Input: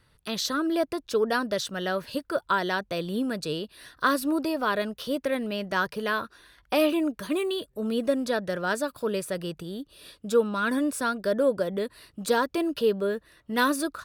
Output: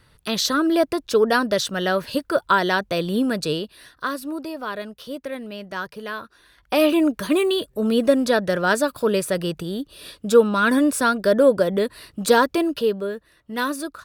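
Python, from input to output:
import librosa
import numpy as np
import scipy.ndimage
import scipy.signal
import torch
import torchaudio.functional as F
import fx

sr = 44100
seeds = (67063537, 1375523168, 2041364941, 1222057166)

y = fx.gain(x, sr, db=fx.line((3.5, 7.0), (4.1, -3.5), (6.24, -3.5), (7.02, 8.0), (12.44, 8.0), (13.15, -1.0)))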